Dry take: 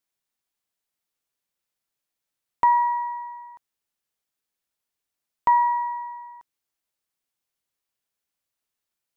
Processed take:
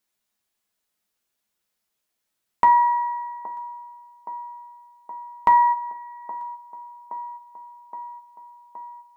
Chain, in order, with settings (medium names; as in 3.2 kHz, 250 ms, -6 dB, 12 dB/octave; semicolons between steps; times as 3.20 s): 5.72–6.22 s: peaking EQ 1.7 kHz -13 dB -> -1.5 dB 2.5 oct; feedback echo behind a band-pass 820 ms, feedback 73%, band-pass 470 Hz, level -13 dB; reverberation RT60 0.30 s, pre-delay 5 ms, DRR 3.5 dB; trim +4 dB